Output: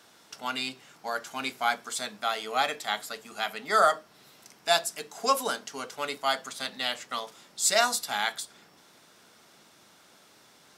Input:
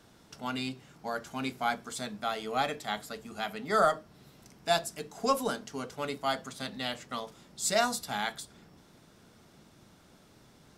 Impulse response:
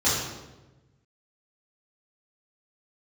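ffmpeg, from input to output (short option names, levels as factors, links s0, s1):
-af "highpass=f=920:p=1,volume=2.11"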